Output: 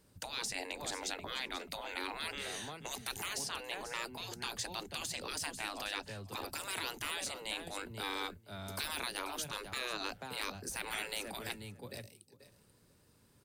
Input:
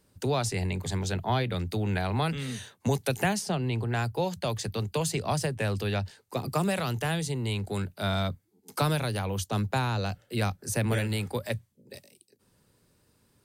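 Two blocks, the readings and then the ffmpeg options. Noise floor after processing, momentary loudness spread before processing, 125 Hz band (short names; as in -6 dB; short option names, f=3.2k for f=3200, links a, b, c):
-67 dBFS, 6 LU, -24.0 dB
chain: -filter_complex "[0:a]asplit=2[a][b];[b]aecho=0:1:486:0.158[c];[a][c]amix=inputs=2:normalize=0,deesser=0.65,afftfilt=real='re*lt(hypot(re,im),0.0631)':imag='im*lt(hypot(re,im),0.0631)':win_size=1024:overlap=0.75,asplit=2[d][e];[e]aecho=0:1:493:0.1[f];[d][f]amix=inputs=2:normalize=0,volume=-1dB"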